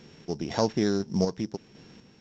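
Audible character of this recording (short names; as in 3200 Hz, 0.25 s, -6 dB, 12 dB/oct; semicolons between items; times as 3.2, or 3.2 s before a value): a buzz of ramps at a fixed pitch in blocks of 8 samples; random-step tremolo 4 Hz; µ-law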